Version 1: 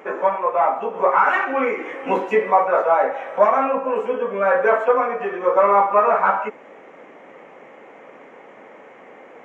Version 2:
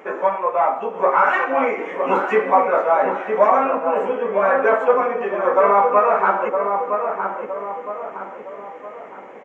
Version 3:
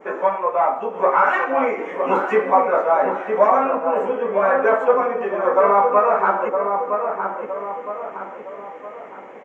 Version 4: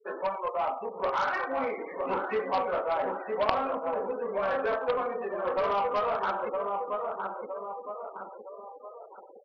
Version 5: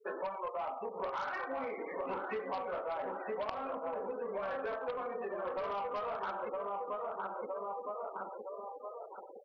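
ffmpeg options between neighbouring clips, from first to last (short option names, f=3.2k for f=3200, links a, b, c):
-filter_complex "[0:a]asplit=2[a][b];[b]adelay=963,lowpass=f=1.5k:p=1,volume=-5dB,asplit=2[c][d];[d]adelay=963,lowpass=f=1.5k:p=1,volume=0.49,asplit=2[e][f];[f]adelay=963,lowpass=f=1.5k:p=1,volume=0.49,asplit=2[g][h];[h]adelay=963,lowpass=f=1.5k:p=1,volume=0.49,asplit=2[i][j];[j]adelay=963,lowpass=f=1.5k:p=1,volume=0.49,asplit=2[k][l];[l]adelay=963,lowpass=f=1.5k:p=1,volume=0.49[m];[a][c][e][g][i][k][m]amix=inputs=7:normalize=0"
-af "adynamicequalizer=threshold=0.0178:dfrequency=2700:dqfactor=1:tfrequency=2700:tqfactor=1:attack=5:release=100:ratio=0.375:range=2:mode=cutabove:tftype=bell"
-af "afftfilt=real='re*gte(hypot(re,im),0.0355)':imag='im*gte(hypot(re,im),0.0355)':win_size=1024:overlap=0.75,aeval=exprs='0.841*(cos(1*acos(clip(val(0)/0.841,-1,1)))-cos(1*PI/2))+0.376*(cos(3*acos(clip(val(0)/0.841,-1,1)))-cos(3*PI/2))+0.15*(cos(5*acos(clip(val(0)/0.841,-1,1)))-cos(5*PI/2))':c=same,volume=-4.5dB"
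-af "acompressor=threshold=-36dB:ratio=6"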